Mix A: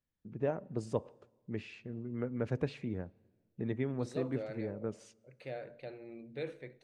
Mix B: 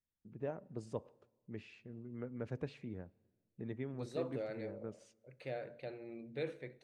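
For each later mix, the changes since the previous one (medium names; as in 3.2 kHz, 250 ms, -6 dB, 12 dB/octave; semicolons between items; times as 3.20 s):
first voice -7.5 dB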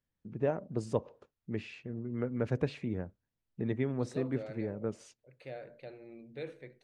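first voice +11.5 dB; reverb: off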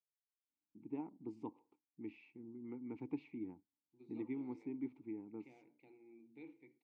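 first voice: entry +0.50 s; master: add vowel filter u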